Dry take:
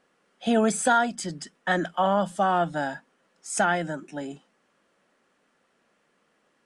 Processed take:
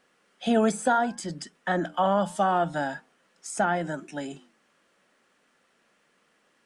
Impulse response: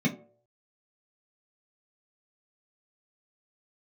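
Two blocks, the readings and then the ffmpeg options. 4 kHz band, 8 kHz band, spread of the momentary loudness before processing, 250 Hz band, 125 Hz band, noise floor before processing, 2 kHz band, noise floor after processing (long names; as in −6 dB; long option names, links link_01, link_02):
−3.0 dB, −5.5 dB, 15 LU, −0.5 dB, −0.5 dB, −70 dBFS, −3.5 dB, −68 dBFS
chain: -filter_complex "[0:a]acrossover=split=1400[link_01][link_02];[link_01]flanger=delay=8.1:depth=3.9:regen=-86:speed=0.73:shape=sinusoidal[link_03];[link_02]acompressor=threshold=-40dB:ratio=6[link_04];[link_03][link_04]amix=inputs=2:normalize=0,volume=4dB"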